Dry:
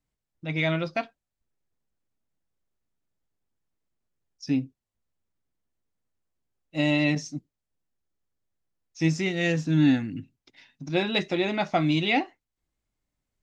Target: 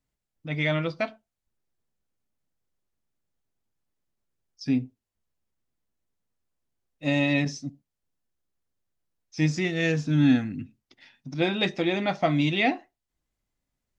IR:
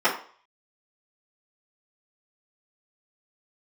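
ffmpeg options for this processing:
-filter_complex "[0:a]asplit=2[a][b];[1:a]atrim=start_sample=2205,atrim=end_sample=3087,asetrate=25137,aresample=44100[c];[b][c]afir=irnorm=-1:irlink=0,volume=-39.5dB[d];[a][d]amix=inputs=2:normalize=0,asetrate=42336,aresample=44100"

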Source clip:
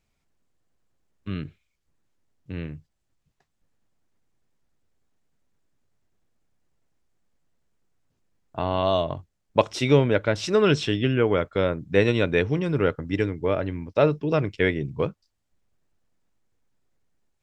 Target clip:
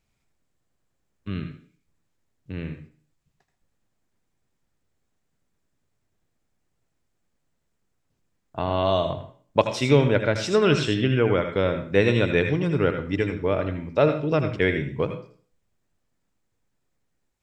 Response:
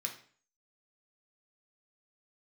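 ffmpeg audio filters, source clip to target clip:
-filter_complex "[0:a]asplit=2[a][b];[1:a]atrim=start_sample=2205,adelay=79[c];[b][c]afir=irnorm=-1:irlink=0,volume=-6.5dB[d];[a][d]amix=inputs=2:normalize=0"

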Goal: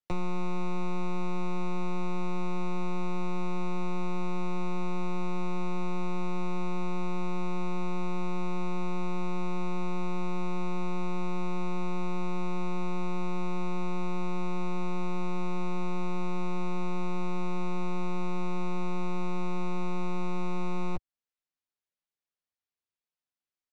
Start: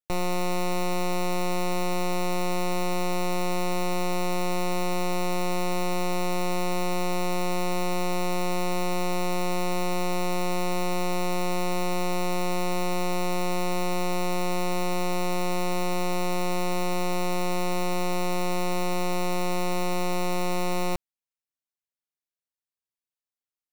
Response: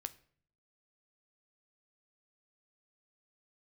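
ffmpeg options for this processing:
-filter_complex "[0:a]lowpass=5.1k,acrossover=split=88|920|2200[a][b][c][d];[a]acompressor=threshold=-28dB:ratio=4[e];[b]acompressor=threshold=-31dB:ratio=4[f];[c]acompressor=threshold=-46dB:ratio=4[g];[d]acompressor=threshold=-52dB:ratio=4[h];[e][f][g][h]amix=inputs=4:normalize=0,asplit=2[i][j];[j]adelay=12,volume=-3.5dB[k];[i][k]amix=inputs=2:normalize=0,volume=-2dB"

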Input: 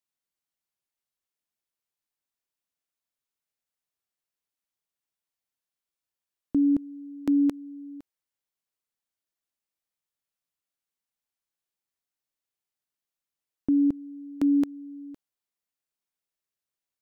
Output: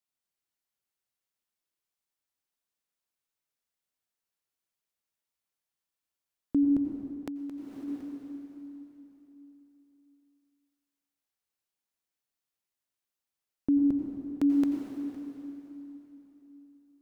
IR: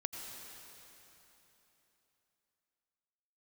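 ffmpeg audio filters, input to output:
-filter_complex "[1:a]atrim=start_sample=2205[a];[0:a][a]afir=irnorm=-1:irlink=0,asettb=1/sr,asplit=3[b][c][d];[b]atrim=end=7.124[e];[c]atrim=start=7.12:end=7.88,asetpts=PTS-STARTPTS,afade=t=in:d=0.004:c=qsin,afade=t=out:st=0.756:d=0.004:c=qsin,acompressor=threshold=-36dB:ratio=10[f];[d]atrim=start=7.876[g];[e][f]acrossfade=d=0.004:c1=hsin:c2=qsin[h];[h][g]acrossfade=d=0.004:c1=qsin:c2=hsin"

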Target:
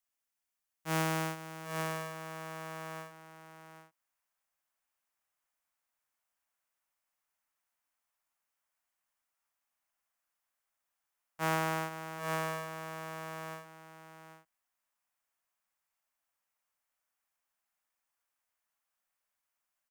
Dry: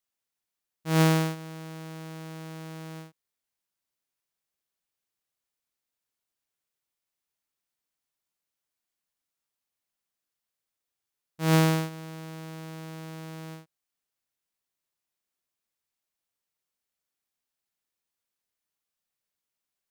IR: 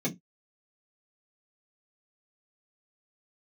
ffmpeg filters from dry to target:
-filter_complex "[0:a]equalizer=f=100:t=o:w=0.67:g=-6,equalizer=f=400:t=o:w=0.67:g=-10,equalizer=f=4k:t=o:w=0.67:g=-6,aecho=1:1:792:0.282,acrossover=split=250|560|1900[a][b][c][d];[c]dynaudnorm=f=790:g=5:m=7.5dB[e];[a][b][e][d]amix=inputs=4:normalize=0,equalizer=f=150:t=o:w=0.98:g=-7,acompressor=threshold=-28dB:ratio=6"

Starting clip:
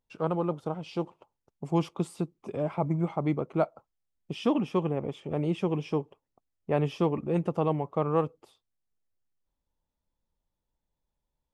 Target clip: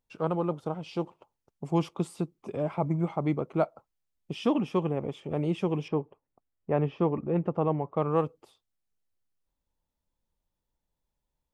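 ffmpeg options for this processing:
-filter_complex "[0:a]asettb=1/sr,asplit=3[a][b][c];[a]atrim=end=5.884[d];[b]atrim=start=5.88:end=7.97,asetpts=PTS-STARTPTS,afade=t=in:d=0.004:c=qsin,afade=t=out:st=2.086:d=0.004:c=qsin,lowpass=2k[e];[c]atrim=start=7.966[f];[d][e]acrossfade=d=0.004:c1=hsin:c2=qsin[g];[g][f]acrossfade=d=0.004:c1=qsin:c2=hsin"

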